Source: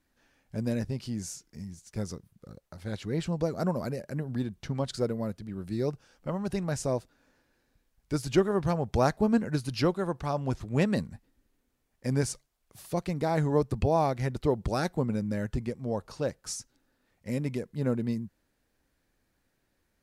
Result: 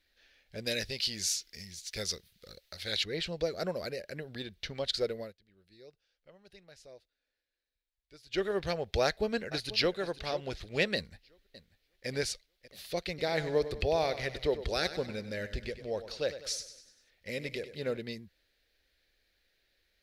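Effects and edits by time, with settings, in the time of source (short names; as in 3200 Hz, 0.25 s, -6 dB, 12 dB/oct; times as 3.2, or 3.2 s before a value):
0.66–3.04 high shelf 2000 Hz +11 dB
5.19–8.45 dip -20 dB, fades 0.15 s
9.02–9.99 echo throw 0.49 s, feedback 30%, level -15 dB
10.95–12.08 echo throw 0.59 s, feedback 75%, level -17 dB
13.08–17.97 feedback echo 98 ms, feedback 51%, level -12.5 dB
whole clip: graphic EQ 125/250/500/1000/2000/4000/8000 Hz -12/-11/+4/-12/+6/+12/-8 dB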